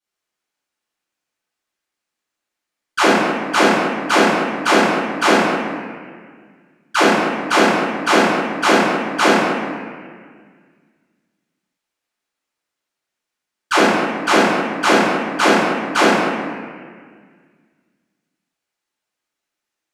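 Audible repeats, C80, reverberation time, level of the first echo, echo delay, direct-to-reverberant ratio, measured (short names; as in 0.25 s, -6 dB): none, -0.5 dB, 1.8 s, none, none, -17.5 dB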